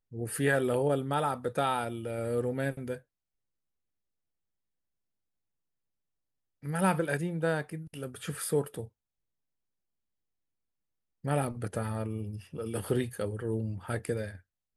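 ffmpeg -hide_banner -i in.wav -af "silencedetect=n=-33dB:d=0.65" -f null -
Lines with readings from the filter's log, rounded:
silence_start: 2.95
silence_end: 6.66 | silence_duration: 3.71
silence_start: 8.84
silence_end: 11.25 | silence_duration: 2.41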